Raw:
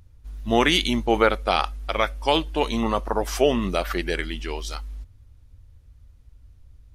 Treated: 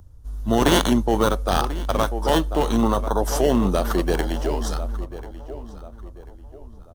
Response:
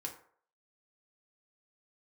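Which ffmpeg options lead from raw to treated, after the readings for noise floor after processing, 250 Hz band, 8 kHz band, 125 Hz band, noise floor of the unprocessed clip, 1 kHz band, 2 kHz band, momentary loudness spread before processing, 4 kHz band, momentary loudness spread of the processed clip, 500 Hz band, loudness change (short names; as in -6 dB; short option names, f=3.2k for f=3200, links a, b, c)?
-43 dBFS, +4.5 dB, +5.5 dB, +6.5 dB, -53 dBFS, +1.0 dB, -3.5 dB, 15 LU, -3.0 dB, 19 LU, +1.5 dB, +1.5 dB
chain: -filter_complex "[0:a]asplit=2[a][b];[b]adelay=1040,lowpass=f=2k:p=1,volume=-14.5dB,asplit=2[c][d];[d]adelay=1040,lowpass=f=2k:p=1,volume=0.38,asplit=2[e][f];[f]adelay=1040,lowpass=f=2k:p=1,volume=0.38,asplit=2[g][h];[h]adelay=1040,lowpass=f=2k:p=1,volume=0.38[i];[a][c][e][g][i]amix=inputs=5:normalize=0,acrossover=split=210|1600|4400[j][k][l][m];[k]alimiter=limit=-16.5dB:level=0:latency=1[n];[l]acrusher=samples=18:mix=1:aa=0.000001[o];[j][n][o][m]amix=inputs=4:normalize=0,volume=5dB"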